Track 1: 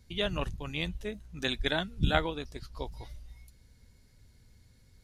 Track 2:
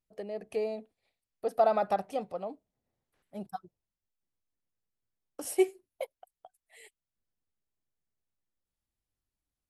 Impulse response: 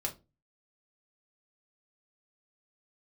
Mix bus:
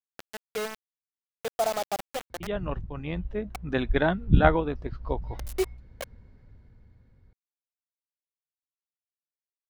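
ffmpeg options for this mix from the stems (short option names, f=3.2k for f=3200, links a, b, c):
-filter_complex "[0:a]lowpass=1.4k,dynaudnorm=f=300:g=7:m=7.5dB,adelay=2300,volume=1.5dB[a];[1:a]bandreject=f=60:t=h:w=6,bandreject=f=120:t=h:w=6,bandreject=f=180:t=h:w=6,acrusher=bits=4:mix=0:aa=0.000001,volume=-2.5dB[b];[a][b]amix=inputs=2:normalize=0"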